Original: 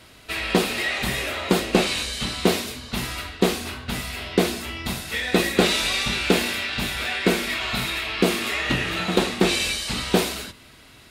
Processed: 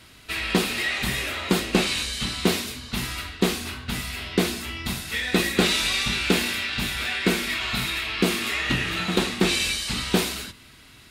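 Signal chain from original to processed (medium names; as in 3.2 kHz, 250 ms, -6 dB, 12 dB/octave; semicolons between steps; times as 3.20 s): peaking EQ 590 Hz -6.5 dB 1.3 oct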